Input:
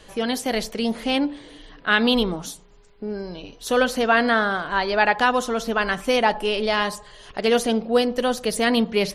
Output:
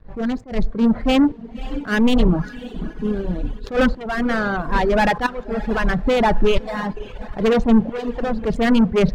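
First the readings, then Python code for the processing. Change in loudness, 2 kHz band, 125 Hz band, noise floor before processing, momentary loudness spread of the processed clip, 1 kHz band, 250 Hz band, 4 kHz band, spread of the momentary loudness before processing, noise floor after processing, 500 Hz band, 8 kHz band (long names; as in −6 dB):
+1.5 dB, −2.5 dB, +11.5 dB, −50 dBFS, 12 LU, −1.0 dB, +6.5 dB, −5.5 dB, 14 LU, −37 dBFS, +1.0 dB, −9.5 dB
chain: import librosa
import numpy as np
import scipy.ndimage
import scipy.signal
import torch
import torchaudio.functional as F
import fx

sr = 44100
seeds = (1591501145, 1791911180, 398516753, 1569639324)

p1 = fx.wiener(x, sr, points=15)
p2 = 10.0 ** (-10.5 / 20.0) * np.tanh(p1 / 10.0 ** (-10.5 / 20.0))
p3 = scipy.signal.sosfilt(scipy.signal.butter(4, 6200.0, 'lowpass', fs=sr, output='sos'), p2)
p4 = fx.low_shelf(p3, sr, hz=84.0, db=11.0)
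p5 = fx.leveller(p4, sr, passes=3)
p6 = fx.bass_treble(p5, sr, bass_db=8, treble_db=-9)
p7 = fx.tremolo_shape(p6, sr, shape='saw_up', hz=0.76, depth_pct=75)
p8 = p7 + fx.echo_diffused(p7, sr, ms=560, feedback_pct=56, wet_db=-13.0, dry=0)
p9 = fx.dereverb_blind(p8, sr, rt60_s=1.2)
y = fx.attack_slew(p9, sr, db_per_s=210.0)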